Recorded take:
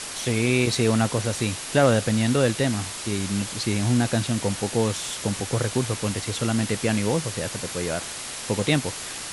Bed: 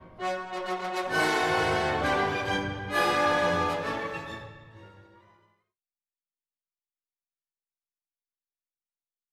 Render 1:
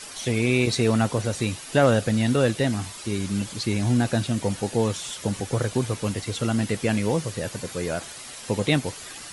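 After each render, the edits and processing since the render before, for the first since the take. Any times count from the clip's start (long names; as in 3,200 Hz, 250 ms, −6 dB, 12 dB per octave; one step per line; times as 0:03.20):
broadband denoise 9 dB, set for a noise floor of −35 dBFS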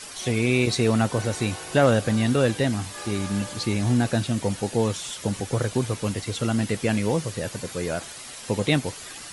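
mix in bed −15 dB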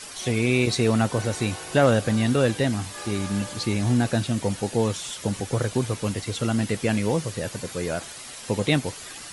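no processing that can be heard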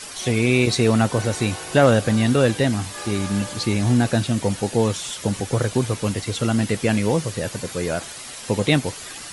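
level +3.5 dB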